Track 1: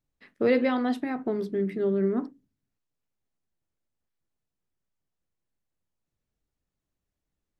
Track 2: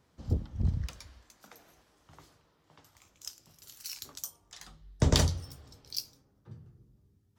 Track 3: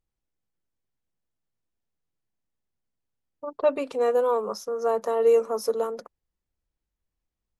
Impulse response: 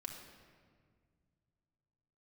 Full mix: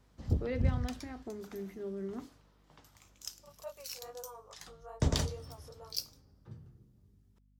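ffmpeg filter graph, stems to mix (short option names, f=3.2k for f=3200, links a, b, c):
-filter_complex "[0:a]volume=-14.5dB[a];[1:a]volume=-1dB,asplit=2[b][c];[c]volume=-22dB[d];[2:a]highpass=f=530:w=0.5412,highpass=f=530:w=1.3066,flanger=delay=20:depth=4.8:speed=2.4,volume=-19dB,asplit=2[e][f];[f]apad=whole_len=325618[g];[b][g]sidechaincompress=threshold=-53dB:ratio=8:attack=9.7:release=198[h];[3:a]atrim=start_sample=2205[i];[d][i]afir=irnorm=-1:irlink=0[j];[a][h][e][j]amix=inputs=4:normalize=0,aeval=exprs='val(0)+0.000501*(sin(2*PI*50*n/s)+sin(2*PI*2*50*n/s)/2+sin(2*PI*3*50*n/s)/3+sin(2*PI*4*50*n/s)/4+sin(2*PI*5*50*n/s)/5)':c=same"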